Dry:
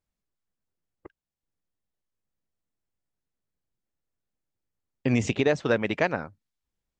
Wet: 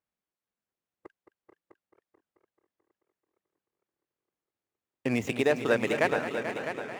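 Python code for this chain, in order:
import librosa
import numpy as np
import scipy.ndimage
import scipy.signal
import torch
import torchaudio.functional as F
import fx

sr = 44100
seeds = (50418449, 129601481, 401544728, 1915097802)

p1 = scipy.ndimage.median_filter(x, 9, mode='constant')
p2 = fx.highpass(p1, sr, hz=340.0, slope=6)
p3 = p2 + fx.echo_heads(p2, sr, ms=218, heads='all three', feedback_pct=45, wet_db=-12.0, dry=0)
y = fx.echo_warbled(p3, sr, ms=461, feedback_pct=62, rate_hz=2.8, cents=181, wet_db=-15.0)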